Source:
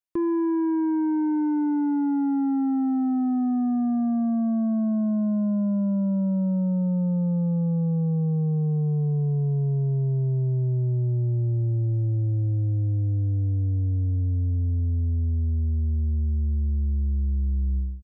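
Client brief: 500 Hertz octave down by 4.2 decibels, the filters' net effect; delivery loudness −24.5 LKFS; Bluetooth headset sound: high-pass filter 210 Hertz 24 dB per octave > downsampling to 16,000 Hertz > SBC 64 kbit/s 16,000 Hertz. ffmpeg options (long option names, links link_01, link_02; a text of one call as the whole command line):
ffmpeg -i in.wav -af "highpass=frequency=210:width=0.5412,highpass=frequency=210:width=1.3066,equalizer=frequency=500:width_type=o:gain=-7,aresample=16000,aresample=44100,volume=4dB" -ar 16000 -c:a sbc -b:a 64k out.sbc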